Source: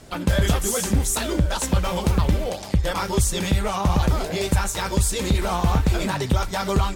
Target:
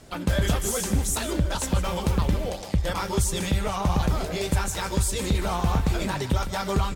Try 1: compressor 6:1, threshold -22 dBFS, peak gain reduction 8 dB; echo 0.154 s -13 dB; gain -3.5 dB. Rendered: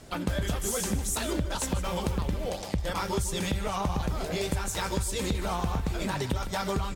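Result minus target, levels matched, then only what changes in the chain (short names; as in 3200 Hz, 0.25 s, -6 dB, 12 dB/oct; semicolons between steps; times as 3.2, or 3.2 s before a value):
compressor: peak gain reduction +8 dB
remove: compressor 6:1, threshold -22 dBFS, peak gain reduction 8 dB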